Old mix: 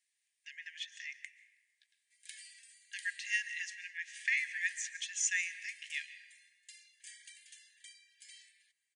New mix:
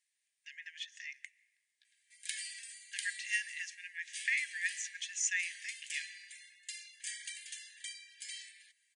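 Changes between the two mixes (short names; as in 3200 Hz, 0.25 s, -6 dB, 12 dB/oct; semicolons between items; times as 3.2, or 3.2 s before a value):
speech: send -9.5 dB; background +10.0 dB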